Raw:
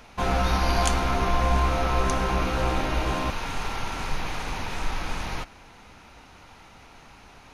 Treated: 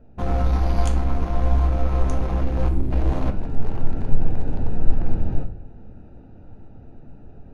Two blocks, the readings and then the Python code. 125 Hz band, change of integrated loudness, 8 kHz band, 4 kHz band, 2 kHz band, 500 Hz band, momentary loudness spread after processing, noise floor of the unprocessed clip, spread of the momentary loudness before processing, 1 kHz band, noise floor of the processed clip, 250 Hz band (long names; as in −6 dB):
+6.0 dB, +1.5 dB, below −10 dB, −13.5 dB, −11.5 dB, −1.5 dB, 8 LU, −50 dBFS, 9 LU, −7.0 dB, −44 dBFS, +2.5 dB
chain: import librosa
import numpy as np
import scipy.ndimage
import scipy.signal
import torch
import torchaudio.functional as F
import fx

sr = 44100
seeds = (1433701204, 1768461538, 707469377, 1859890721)

y = fx.wiener(x, sr, points=41)
y = fx.rider(y, sr, range_db=5, speed_s=2.0)
y = fx.spec_box(y, sr, start_s=2.69, length_s=0.22, low_hz=440.0, high_hz=7300.0, gain_db=-13)
y = fx.tilt_shelf(y, sr, db=5.5, hz=760.0)
y = fx.room_shoebox(y, sr, seeds[0], volume_m3=56.0, walls='mixed', distance_m=0.33)
y = y * librosa.db_to_amplitude(-1.5)